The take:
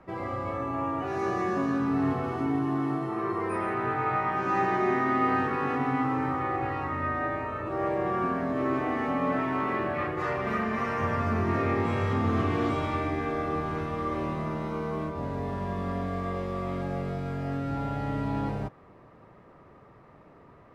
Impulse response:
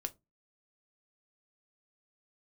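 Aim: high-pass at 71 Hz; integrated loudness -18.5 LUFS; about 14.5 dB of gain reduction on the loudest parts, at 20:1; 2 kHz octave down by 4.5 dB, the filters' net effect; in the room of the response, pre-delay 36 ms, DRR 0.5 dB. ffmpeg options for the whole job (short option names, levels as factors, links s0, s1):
-filter_complex "[0:a]highpass=71,equalizer=f=2000:t=o:g=-5.5,acompressor=threshold=0.0141:ratio=20,asplit=2[s0][s1];[1:a]atrim=start_sample=2205,adelay=36[s2];[s1][s2]afir=irnorm=-1:irlink=0,volume=1.06[s3];[s0][s3]amix=inputs=2:normalize=0,volume=9.44"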